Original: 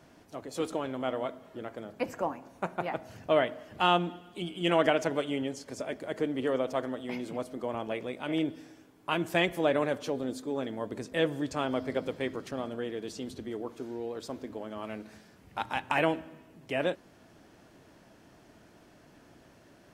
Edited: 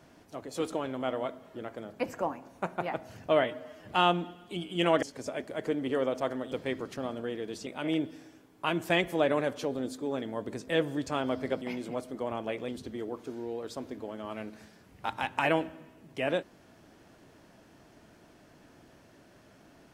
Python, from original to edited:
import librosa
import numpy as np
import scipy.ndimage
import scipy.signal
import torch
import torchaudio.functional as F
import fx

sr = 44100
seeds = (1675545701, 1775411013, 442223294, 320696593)

y = fx.edit(x, sr, fx.stretch_span(start_s=3.44, length_s=0.29, factor=1.5),
    fx.cut(start_s=4.88, length_s=0.67),
    fx.swap(start_s=7.04, length_s=1.07, other_s=12.06, other_length_s=1.15), tone=tone)